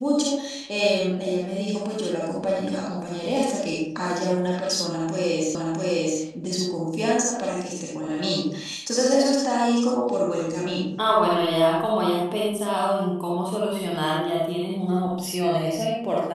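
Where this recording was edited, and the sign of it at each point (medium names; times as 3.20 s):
5.55 s: repeat of the last 0.66 s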